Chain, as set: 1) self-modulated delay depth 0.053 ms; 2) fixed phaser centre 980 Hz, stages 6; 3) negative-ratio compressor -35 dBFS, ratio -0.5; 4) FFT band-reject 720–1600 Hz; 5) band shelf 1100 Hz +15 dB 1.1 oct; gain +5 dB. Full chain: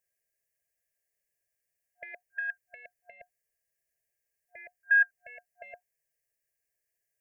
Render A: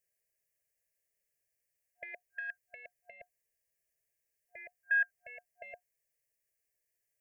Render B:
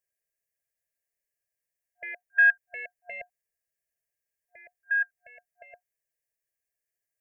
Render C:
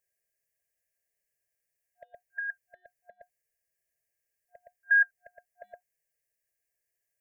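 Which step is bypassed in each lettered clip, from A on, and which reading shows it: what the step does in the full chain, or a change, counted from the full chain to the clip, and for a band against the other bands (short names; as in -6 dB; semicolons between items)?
5, loudness change -7.5 LU; 3, momentary loudness spread change -2 LU; 1, momentary loudness spread change -8 LU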